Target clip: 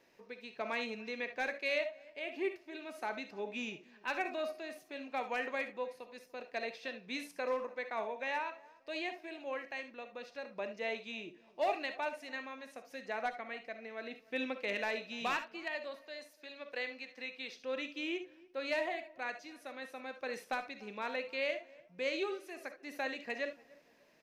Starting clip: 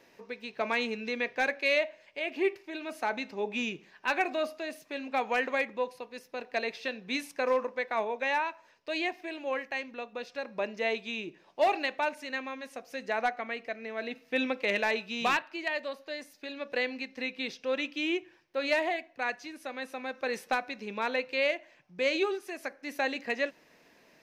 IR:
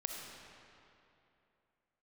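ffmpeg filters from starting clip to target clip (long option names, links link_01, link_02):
-filter_complex "[0:a]asettb=1/sr,asplit=3[link_01][link_02][link_03];[link_01]atrim=end=16.064[link_04];[link_02]atrim=start=16.06:end=17.58,asetpts=PTS-STARTPTS,afade=type=in:duration=0.004:curve=qsin,afade=type=out:start_time=1.516:duration=0.004:curve=qsin,highpass=frequency=470:poles=1[link_05];[link_03]atrim=start=17.576[link_06];[link_04][link_05]acrossfade=duration=0.004:curve1=hsin:curve2=qsin[link_07];[link_07][link_06]acrossfade=duration=0.004:curve1=qsin:curve2=hsin,asplit=2[link_08][link_09];[link_09]adelay=292,lowpass=frequency=1300:poles=1,volume=-21.5dB,asplit=2[link_10][link_11];[link_11]adelay=292,lowpass=frequency=1300:poles=1,volume=0.38,asplit=2[link_12][link_13];[link_13]adelay=292,lowpass=frequency=1300:poles=1,volume=0.38[link_14];[link_08][link_10][link_12][link_14]amix=inputs=4:normalize=0[link_15];[1:a]atrim=start_sample=2205,atrim=end_sample=3528[link_16];[link_15][link_16]afir=irnorm=-1:irlink=0,volume=-6dB"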